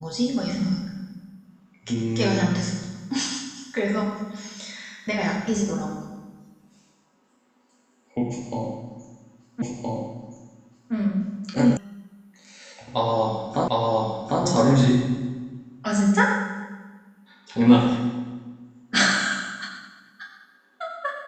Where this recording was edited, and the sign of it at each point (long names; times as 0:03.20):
0:09.62: the same again, the last 1.32 s
0:11.77: cut off before it has died away
0:13.68: the same again, the last 0.75 s